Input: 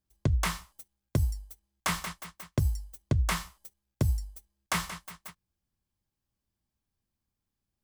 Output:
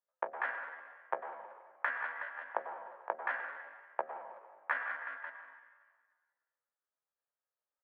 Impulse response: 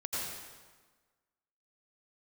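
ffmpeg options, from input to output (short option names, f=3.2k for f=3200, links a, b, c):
-filter_complex "[0:a]agate=range=-17dB:threshold=-56dB:ratio=16:detection=peak,bandreject=f=50:t=h:w=6,bandreject=f=100:t=h:w=6,bandreject=f=150:t=h:w=6,bandreject=f=200:t=h:w=6,bandreject=f=250:t=h:w=6,bandreject=f=300:t=h:w=6,bandreject=f=350:t=h:w=6,bandreject=f=400:t=h:w=6,bandreject=f=450:t=h:w=6,bandreject=f=500:t=h:w=6,acompressor=threshold=-51dB:ratio=2,aeval=exprs='0.0631*(cos(1*acos(clip(val(0)/0.0631,-1,1)))-cos(1*PI/2))+0.000501*(cos(2*acos(clip(val(0)/0.0631,-1,1)))-cos(2*PI/2))+0.00631*(cos(4*acos(clip(val(0)/0.0631,-1,1)))-cos(4*PI/2))+0.000631*(cos(7*acos(clip(val(0)/0.0631,-1,1)))-cos(7*PI/2))':c=same,asuperpass=centerf=640:order=8:qfactor=0.76,asplit=2[a][b];[1:a]atrim=start_sample=2205,asetrate=39690,aresample=44100[c];[b][c]afir=irnorm=-1:irlink=0,volume=-8dB[d];[a][d]amix=inputs=2:normalize=0,asetrate=68011,aresample=44100,atempo=0.64842,volume=13dB"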